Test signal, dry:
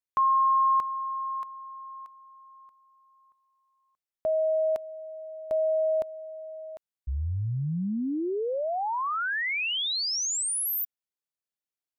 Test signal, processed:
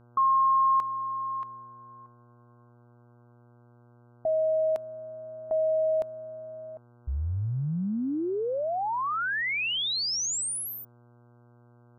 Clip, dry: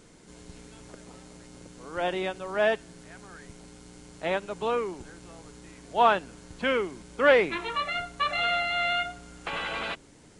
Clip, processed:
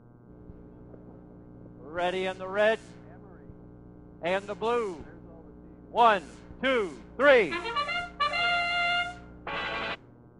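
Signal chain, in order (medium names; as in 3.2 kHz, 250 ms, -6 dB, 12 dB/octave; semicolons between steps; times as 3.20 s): level-controlled noise filter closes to 360 Hz, open at -25.5 dBFS; mains buzz 120 Hz, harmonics 13, -57 dBFS -6 dB/octave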